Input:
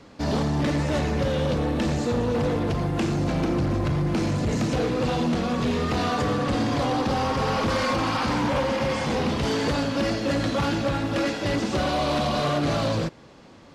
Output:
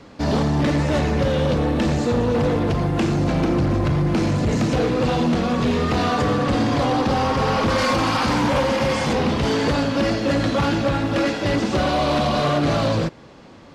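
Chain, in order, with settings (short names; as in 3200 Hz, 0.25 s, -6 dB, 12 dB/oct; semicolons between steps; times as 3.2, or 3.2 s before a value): high shelf 5600 Hz -4 dB, from 7.78 s +3 dB, from 9.13 s -5 dB; gain +4.5 dB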